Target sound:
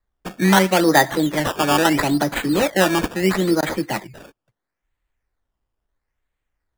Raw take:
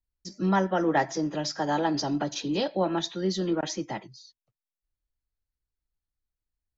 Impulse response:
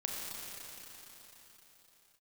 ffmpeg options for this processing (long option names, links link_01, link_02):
-af "acrusher=samples=15:mix=1:aa=0.000001:lfo=1:lforange=15:lforate=0.75,equalizer=frequency=1900:width_type=o:width=0.45:gain=6,volume=9dB"